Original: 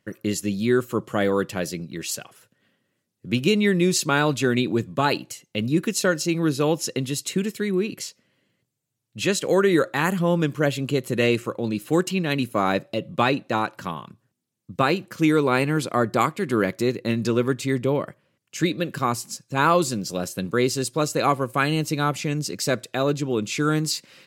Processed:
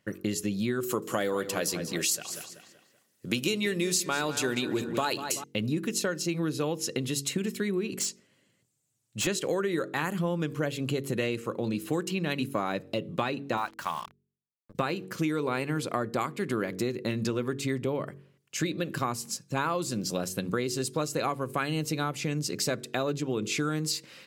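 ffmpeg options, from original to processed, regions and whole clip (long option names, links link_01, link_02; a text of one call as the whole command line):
ffmpeg -i in.wav -filter_complex "[0:a]asettb=1/sr,asplit=3[link_01][link_02][link_03];[link_01]atrim=end=0.834[link_04];[link_02]atrim=start=0.83:end=5.44,asetpts=PTS-STARTPTS,afade=type=in:duration=0.004:curve=qsin,afade=type=out:start_time=4.606:duration=0.004:curve=qsin,bass=frequency=250:gain=-7,treble=frequency=4000:gain=8,acontrast=21,asplit=2[link_05][link_06];[link_06]adelay=191,lowpass=frequency=4700:poles=1,volume=-12.5dB,asplit=2[link_07][link_08];[link_08]adelay=191,lowpass=frequency=4700:poles=1,volume=0.42,asplit=2[link_09][link_10];[link_10]adelay=191,lowpass=frequency=4700:poles=1,volume=0.42,asplit=2[link_11][link_12];[link_12]adelay=191,lowpass=frequency=4700:poles=1,volume=0.42[link_13];[link_05][link_07][link_09][link_11][link_13]amix=inputs=5:normalize=0,atrim=end_sample=203301[link_14];[link_03]atrim=start=5.436[link_15];[link_04][link_14]acrossfade=duration=0.004:curve1=hsin:curve2=qsin[link_16];[link_16][link_15]acrossfade=duration=0.004:curve1=qsin:curve2=hsin,asettb=1/sr,asplit=3[link_17][link_18][link_19];[link_17]atrim=end=7.914[link_20];[link_18]atrim=start=7.91:end=9.27,asetpts=PTS-STARTPTS,afade=type=in:duration=0.004:curve=qsin,afade=type=out:start_time=1.356:duration=0.004:curve=qsin,equalizer=frequency=7700:width_type=o:width=0.78:gain=10,asoftclip=type=hard:threshold=-24.5dB[link_21];[link_19]atrim=start=9.266[link_22];[link_20][link_21]acrossfade=duration=0.004:curve1=hsin:curve2=qsin[link_23];[link_23][link_22]acrossfade=duration=0.004:curve1=qsin:curve2=hsin,asettb=1/sr,asplit=3[link_24][link_25][link_26];[link_24]atrim=end=13.574[link_27];[link_25]atrim=start=13.57:end=14.75,asetpts=PTS-STARTPTS,afade=type=in:duration=0.004:curve=qsin,afade=type=out:start_time=1.176:duration=0.004:curve=qsin,lowshelf=frequency=580:width_type=q:width=1.5:gain=-10,bandreject=frequency=60:width_type=h:width=6,bandreject=frequency=120:width_type=h:width=6,bandreject=frequency=180:width_type=h:width=6,bandreject=frequency=240:width_type=h:width=6,bandreject=frequency=300:width_type=h:width=6,acrusher=bits=6:mix=0:aa=0.5[link_28];[link_26]atrim=start=14.746[link_29];[link_27][link_28]acrossfade=duration=0.004:curve1=hsin:curve2=qsin[link_30];[link_30][link_29]acrossfade=duration=0.004:curve1=qsin:curve2=hsin,bandreject=frequency=46.57:width_type=h:width=4,bandreject=frequency=93.14:width_type=h:width=4,bandreject=frequency=139.71:width_type=h:width=4,bandreject=frequency=186.28:width_type=h:width=4,bandreject=frequency=232.85:width_type=h:width=4,bandreject=frequency=279.42:width_type=h:width=4,bandreject=frequency=325.99:width_type=h:width=4,bandreject=frequency=372.56:width_type=h:width=4,bandreject=frequency=419.13:width_type=h:width=4,bandreject=frequency=465.7:width_type=h:width=4,acompressor=threshold=-26dB:ratio=6" out.wav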